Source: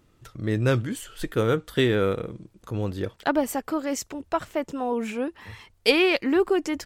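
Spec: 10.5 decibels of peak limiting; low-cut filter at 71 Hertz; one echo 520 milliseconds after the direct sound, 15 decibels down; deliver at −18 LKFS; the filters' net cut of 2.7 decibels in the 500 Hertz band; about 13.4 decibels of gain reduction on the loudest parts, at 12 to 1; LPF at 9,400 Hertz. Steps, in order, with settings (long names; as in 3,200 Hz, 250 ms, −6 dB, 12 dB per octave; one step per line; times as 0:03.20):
high-pass filter 71 Hz
low-pass filter 9,400 Hz
parametric band 500 Hz −3.5 dB
downward compressor 12 to 1, threshold −29 dBFS
brickwall limiter −26 dBFS
single-tap delay 520 ms −15 dB
level +19 dB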